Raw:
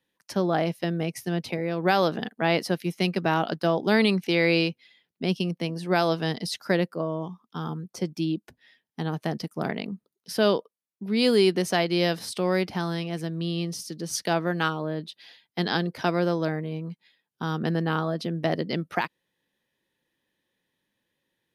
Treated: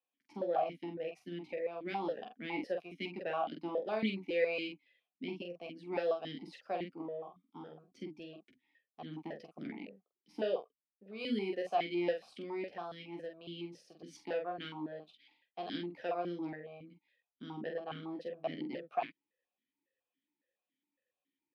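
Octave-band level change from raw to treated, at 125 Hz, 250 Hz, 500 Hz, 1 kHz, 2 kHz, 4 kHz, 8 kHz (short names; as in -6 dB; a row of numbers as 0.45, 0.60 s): -22.5 dB, -15.0 dB, -11.0 dB, -11.0 dB, -15.5 dB, -16.5 dB, under -25 dB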